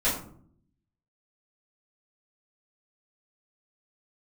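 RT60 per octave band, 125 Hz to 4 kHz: 1.0, 0.90, 0.65, 0.50, 0.35, 0.30 seconds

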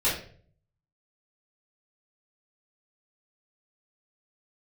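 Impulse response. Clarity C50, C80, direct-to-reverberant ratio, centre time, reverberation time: 5.0 dB, 9.5 dB, −10.0 dB, 38 ms, 0.50 s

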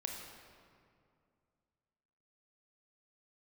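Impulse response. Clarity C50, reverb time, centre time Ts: 2.5 dB, 2.3 s, 73 ms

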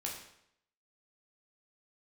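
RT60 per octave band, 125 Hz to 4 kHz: 0.75, 0.70, 0.75, 0.75, 0.70, 0.65 seconds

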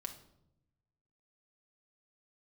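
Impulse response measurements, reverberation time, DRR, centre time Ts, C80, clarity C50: 0.80 s, 4.0 dB, 11 ms, 14.5 dB, 10.5 dB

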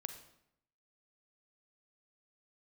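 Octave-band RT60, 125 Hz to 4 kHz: 0.85, 0.85, 0.75, 0.75, 0.70, 0.60 seconds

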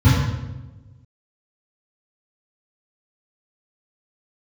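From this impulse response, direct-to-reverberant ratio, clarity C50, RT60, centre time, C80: −12.0 dB, −1.0 dB, 1.1 s, 83 ms, 1.5 dB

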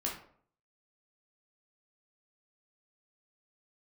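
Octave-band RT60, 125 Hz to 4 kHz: 0.70, 0.60, 0.60, 0.55, 0.45, 0.35 seconds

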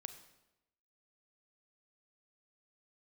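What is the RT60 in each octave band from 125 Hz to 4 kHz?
0.95, 0.95, 1.0, 0.90, 0.85, 0.80 seconds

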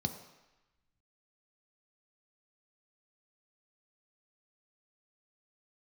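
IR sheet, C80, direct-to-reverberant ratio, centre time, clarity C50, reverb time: 11.5 dB, 6.0 dB, 16 ms, 10.0 dB, 1.0 s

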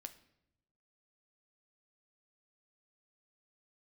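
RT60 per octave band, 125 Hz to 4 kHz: 1.3, 1.1, 0.95, 0.70, 0.70, 0.60 seconds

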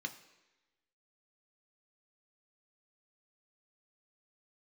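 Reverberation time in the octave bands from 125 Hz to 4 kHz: 0.80, 1.0, 1.1, 1.1, 1.2, 1.1 seconds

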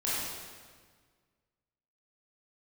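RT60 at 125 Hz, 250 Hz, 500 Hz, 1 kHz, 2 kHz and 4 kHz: 2.0, 1.9, 1.6, 1.6, 1.5, 1.4 seconds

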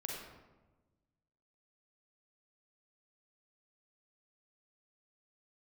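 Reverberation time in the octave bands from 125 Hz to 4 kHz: 1.8, 1.6, 1.3, 1.1, 0.85, 0.65 seconds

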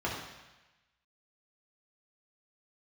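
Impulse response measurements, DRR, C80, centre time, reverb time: −4.5 dB, 5.0 dB, 54 ms, 1.1 s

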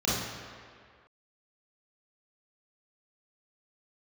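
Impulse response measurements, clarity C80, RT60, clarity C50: 1.5 dB, 2.0 s, −2.0 dB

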